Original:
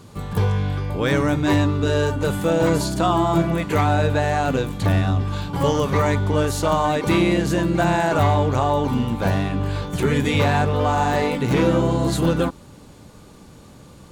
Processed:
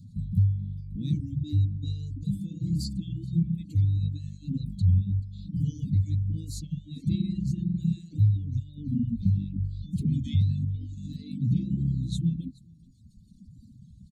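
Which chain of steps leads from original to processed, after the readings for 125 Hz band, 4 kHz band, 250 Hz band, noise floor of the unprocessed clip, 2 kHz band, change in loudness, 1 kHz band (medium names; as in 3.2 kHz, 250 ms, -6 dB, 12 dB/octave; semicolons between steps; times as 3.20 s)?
-4.0 dB, under -15 dB, -9.5 dB, -45 dBFS, under -35 dB, -8.5 dB, under -40 dB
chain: spectral contrast enhancement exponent 1.7; Chebyshev band-stop 230–3900 Hz, order 4; on a send: feedback delay 423 ms, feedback 18%, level -18.5 dB; on the sum: reverb removal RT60 1.6 s; peaking EQ 2.2 kHz +10 dB 0.77 oct; warped record 33 1/3 rpm, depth 100 cents; trim -1 dB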